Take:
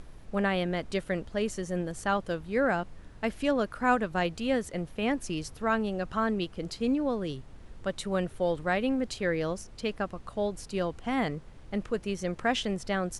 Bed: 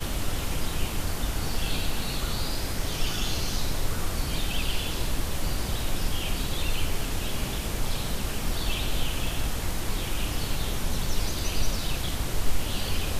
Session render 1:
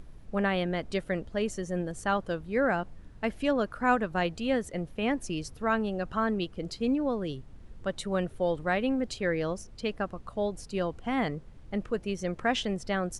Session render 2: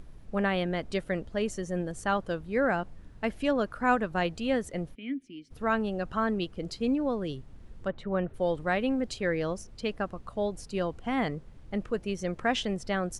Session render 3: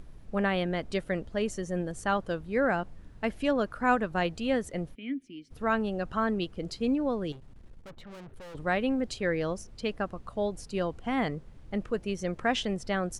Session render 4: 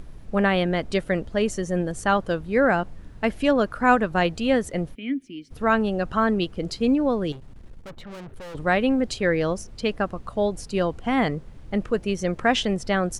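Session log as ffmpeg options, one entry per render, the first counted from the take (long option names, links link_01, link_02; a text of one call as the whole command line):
ffmpeg -i in.wav -af "afftdn=noise_reduction=6:noise_floor=-49" out.wav
ffmpeg -i in.wav -filter_complex "[0:a]asplit=3[link_01][link_02][link_03];[link_01]afade=type=out:start_time=4.94:duration=0.02[link_04];[link_02]asplit=3[link_05][link_06][link_07];[link_05]bandpass=frequency=270:width_type=q:width=8,volume=0dB[link_08];[link_06]bandpass=frequency=2290:width_type=q:width=8,volume=-6dB[link_09];[link_07]bandpass=frequency=3010:width_type=q:width=8,volume=-9dB[link_10];[link_08][link_09][link_10]amix=inputs=3:normalize=0,afade=type=in:start_time=4.94:duration=0.02,afade=type=out:start_time=5.5:duration=0.02[link_11];[link_03]afade=type=in:start_time=5.5:duration=0.02[link_12];[link_04][link_11][link_12]amix=inputs=3:normalize=0,asplit=3[link_13][link_14][link_15];[link_13]afade=type=out:start_time=7.87:duration=0.02[link_16];[link_14]lowpass=2000,afade=type=in:start_time=7.87:duration=0.02,afade=type=out:start_time=8.33:duration=0.02[link_17];[link_15]afade=type=in:start_time=8.33:duration=0.02[link_18];[link_16][link_17][link_18]amix=inputs=3:normalize=0" out.wav
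ffmpeg -i in.wav -filter_complex "[0:a]asettb=1/sr,asplit=3[link_01][link_02][link_03];[link_01]atrim=end=7.324[link_04];[link_02]atrim=start=7.32:end=8.55,asetpts=PTS-STARTPTS,afade=type=in:duration=0.004:curve=qsin,afade=type=out:start_time=1.226:duration=0.004:curve=qsin,aeval=exprs='(tanh(158*val(0)+0.4)-tanh(0.4))/158':channel_layout=same[link_05];[link_03]atrim=start=8.546[link_06];[link_04][link_05]acrossfade=duration=0.004:curve1=hsin:curve2=qsin[link_07];[link_07][link_06]acrossfade=duration=0.004:curve1=qsin:curve2=hsin" out.wav
ffmpeg -i in.wav -af "volume=7dB" out.wav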